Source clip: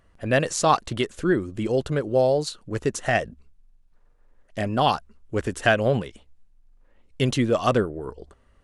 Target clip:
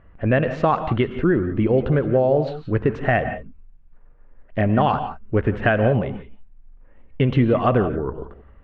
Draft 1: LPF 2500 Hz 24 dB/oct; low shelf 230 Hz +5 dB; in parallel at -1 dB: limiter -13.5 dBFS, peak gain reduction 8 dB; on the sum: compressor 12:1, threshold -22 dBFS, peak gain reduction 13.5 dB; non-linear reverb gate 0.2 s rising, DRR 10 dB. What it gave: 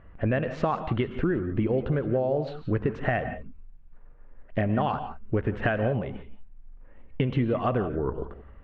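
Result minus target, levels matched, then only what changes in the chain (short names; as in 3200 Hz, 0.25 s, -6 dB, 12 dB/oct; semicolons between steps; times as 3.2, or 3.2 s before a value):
compressor: peak gain reduction +8.5 dB
change: compressor 12:1, threshold -13 dBFS, peak gain reduction 5 dB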